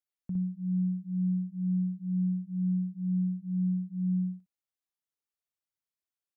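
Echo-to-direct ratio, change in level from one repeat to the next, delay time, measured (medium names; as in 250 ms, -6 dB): -3.0 dB, -15.0 dB, 60 ms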